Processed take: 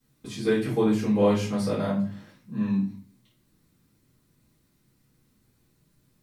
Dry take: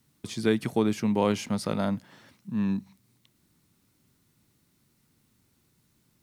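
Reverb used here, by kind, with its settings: simulated room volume 41 m³, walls mixed, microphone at 2.1 m; trim -11 dB

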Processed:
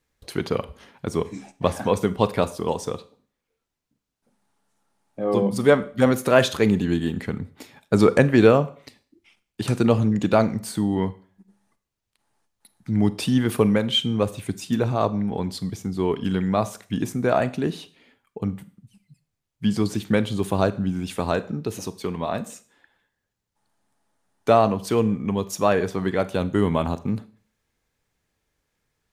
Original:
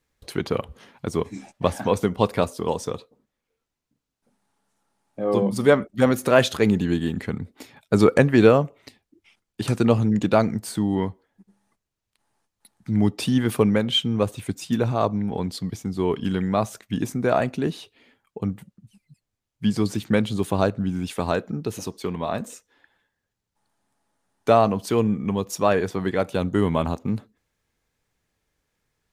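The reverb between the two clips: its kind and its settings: Schroeder reverb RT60 0.45 s, combs from 32 ms, DRR 15.5 dB

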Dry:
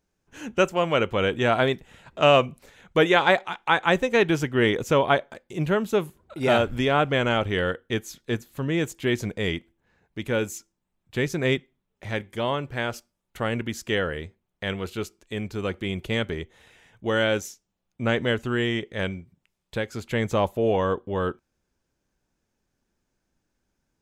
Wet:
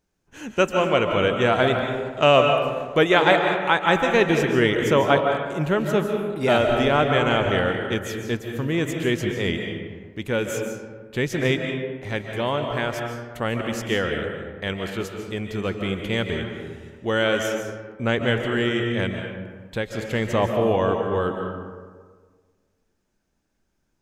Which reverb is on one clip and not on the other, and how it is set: algorithmic reverb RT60 1.6 s, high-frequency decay 0.45×, pre-delay 105 ms, DRR 3.5 dB; trim +1 dB

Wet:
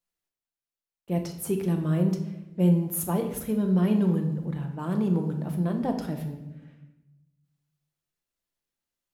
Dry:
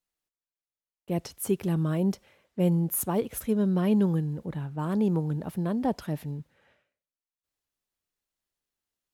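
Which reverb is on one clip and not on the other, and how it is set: simulated room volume 390 m³, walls mixed, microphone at 0.8 m; trim -2 dB

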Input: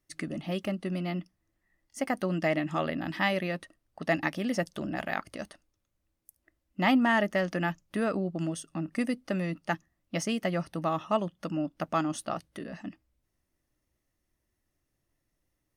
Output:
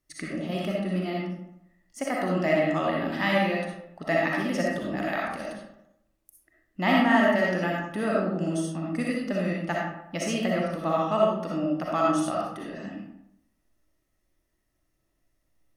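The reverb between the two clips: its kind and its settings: algorithmic reverb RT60 0.82 s, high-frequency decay 0.55×, pre-delay 20 ms, DRR -3.5 dB; trim -1 dB

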